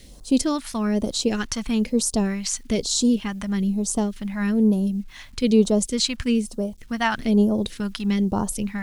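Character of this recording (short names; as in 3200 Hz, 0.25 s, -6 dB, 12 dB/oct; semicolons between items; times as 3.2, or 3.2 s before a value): a quantiser's noise floor 10-bit, dither none; phasing stages 2, 1.1 Hz, lowest notch 400–2100 Hz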